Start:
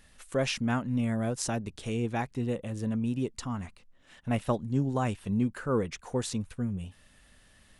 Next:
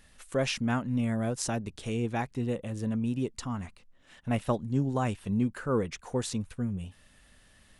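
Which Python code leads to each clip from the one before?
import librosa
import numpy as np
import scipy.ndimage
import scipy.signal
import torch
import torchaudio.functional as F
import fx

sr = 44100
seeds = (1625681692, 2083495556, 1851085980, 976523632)

y = x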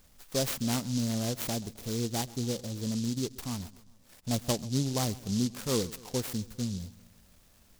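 y = fx.echo_feedback(x, sr, ms=132, feedback_pct=56, wet_db=-20.0)
y = fx.noise_mod_delay(y, sr, seeds[0], noise_hz=5100.0, depth_ms=0.17)
y = y * librosa.db_to_amplitude(-1.5)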